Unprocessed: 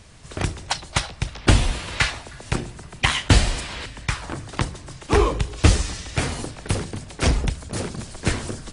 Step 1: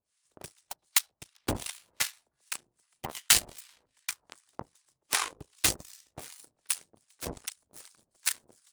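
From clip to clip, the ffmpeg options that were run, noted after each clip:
-filter_complex "[0:a]aeval=exprs='0.75*(cos(1*acos(clip(val(0)/0.75,-1,1)))-cos(1*PI/2))+0.0422*(cos(3*acos(clip(val(0)/0.75,-1,1)))-cos(3*PI/2))+0.0944*(cos(6*acos(clip(val(0)/0.75,-1,1)))-cos(6*PI/2))+0.0841*(cos(7*acos(clip(val(0)/0.75,-1,1)))-cos(7*PI/2))+0.0422*(cos(8*acos(clip(val(0)/0.75,-1,1)))-cos(8*PI/2))':c=same,acrossover=split=890[s0][s1];[s0]aeval=exprs='val(0)*(1-1/2+1/2*cos(2*PI*2.6*n/s))':c=same[s2];[s1]aeval=exprs='val(0)*(1-1/2-1/2*cos(2*PI*2.6*n/s))':c=same[s3];[s2][s3]amix=inputs=2:normalize=0,aemphasis=mode=production:type=riaa,volume=0.562"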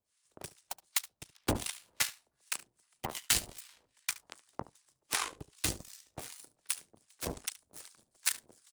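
-filter_complex "[0:a]acrossover=split=360[s0][s1];[s1]alimiter=limit=0.266:level=0:latency=1:release=311[s2];[s0][s2]amix=inputs=2:normalize=0,aecho=1:1:72:0.112"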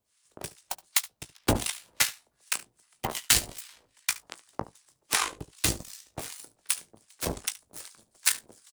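-filter_complex "[0:a]asplit=2[s0][s1];[s1]adelay=18,volume=0.266[s2];[s0][s2]amix=inputs=2:normalize=0,volume=2.11"

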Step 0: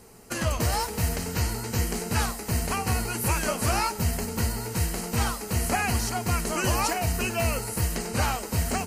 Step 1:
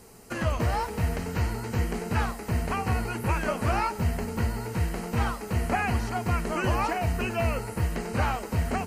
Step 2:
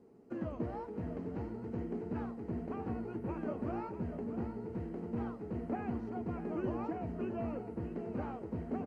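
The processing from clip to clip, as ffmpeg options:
-filter_complex "[0:a]acrossover=split=2900[s0][s1];[s1]acompressor=threshold=0.00447:ratio=4:attack=1:release=60[s2];[s0][s2]amix=inputs=2:normalize=0"
-af "bandpass=f=300:t=q:w=1.8:csg=0,aecho=1:1:642:0.316,volume=0.75"

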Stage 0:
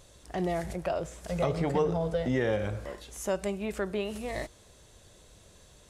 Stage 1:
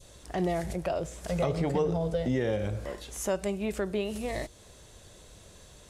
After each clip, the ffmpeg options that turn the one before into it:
-filter_complex "[0:a]adynamicequalizer=threshold=0.00501:dfrequency=1300:dqfactor=0.75:tfrequency=1300:tqfactor=0.75:attack=5:release=100:ratio=0.375:range=3.5:mode=cutabove:tftype=bell,asplit=2[s0][s1];[s1]alimiter=level_in=1.41:limit=0.0631:level=0:latency=1:release=296,volume=0.708,volume=1.06[s2];[s0][s2]amix=inputs=2:normalize=0,volume=0.75"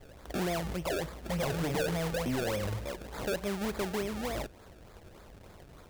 -af "acrusher=samples=30:mix=1:aa=0.000001:lfo=1:lforange=30:lforate=3.4,asoftclip=type=tanh:threshold=0.0447"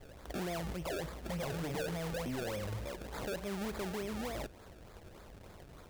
-af "alimiter=level_in=2.82:limit=0.0631:level=0:latency=1:release=31,volume=0.355,volume=0.891"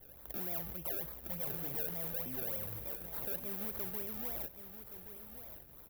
-filter_complex "[0:a]aexciter=amount=15.6:drive=5.9:freq=11000,asplit=2[s0][s1];[s1]aecho=0:1:1123:0.299[s2];[s0][s2]amix=inputs=2:normalize=0,volume=0.376"

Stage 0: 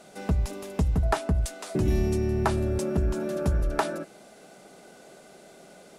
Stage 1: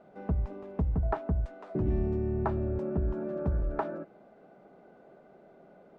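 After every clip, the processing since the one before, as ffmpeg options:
-af "lowpass=1200,volume=0.596"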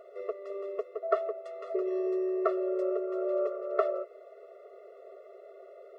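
-af "afftfilt=real='re*eq(mod(floor(b*sr/1024/360),2),1)':imag='im*eq(mod(floor(b*sr/1024/360),2),1)':win_size=1024:overlap=0.75,volume=2.51"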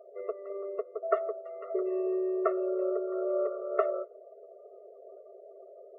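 -af "afftdn=nr=30:nf=-49"

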